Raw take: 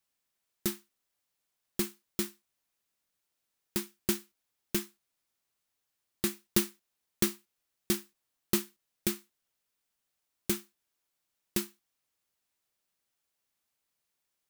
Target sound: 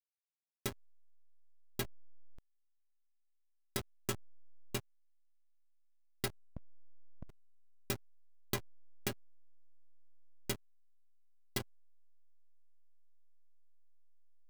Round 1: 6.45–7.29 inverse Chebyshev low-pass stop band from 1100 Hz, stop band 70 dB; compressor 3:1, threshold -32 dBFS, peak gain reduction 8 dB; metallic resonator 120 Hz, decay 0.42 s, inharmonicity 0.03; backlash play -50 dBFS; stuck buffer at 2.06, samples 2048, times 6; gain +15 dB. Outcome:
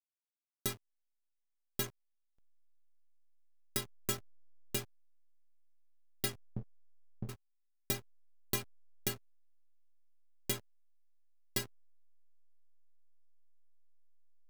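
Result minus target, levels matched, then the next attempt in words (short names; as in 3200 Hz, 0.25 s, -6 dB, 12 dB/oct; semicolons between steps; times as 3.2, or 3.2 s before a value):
backlash: distortion -10 dB
6.45–7.29 inverse Chebyshev low-pass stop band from 1100 Hz, stop band 70 dB; compressor 3:1, threshold -32 dBFS, peak gain reduction 8 dB; metallic resonator 120 Hz, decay 0.42 s, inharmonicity 0.03; backlash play -39.5 dBFS; stuck buffer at 2.06, samples 2048, times 6; gain +15 dB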